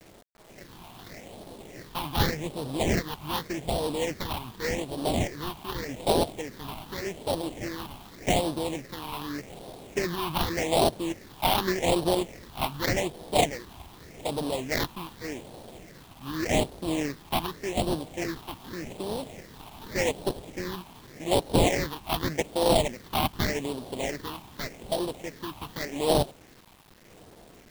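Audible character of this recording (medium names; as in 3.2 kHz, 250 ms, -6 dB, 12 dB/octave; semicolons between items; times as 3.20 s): aliases and images of a low sample rate 1.4 kHz, jitter 20%; phasing stages 6, 0.85 Hz, lowest notch 490–2000 Hz; a quantiser's noise floor 10-bit, dither none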